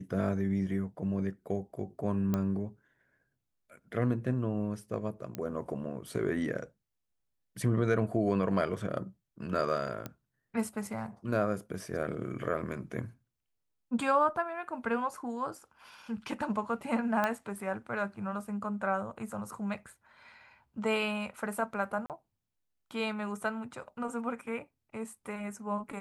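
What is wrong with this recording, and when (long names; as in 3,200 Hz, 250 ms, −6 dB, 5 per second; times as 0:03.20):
0:02.34: click −18 dBFS
0:05.35: click −22 dBFS
0:10.06: click −22 dBFS
0:17.24: click −16 dBFS
0:22.06–0:22.10: drop-out 38 ms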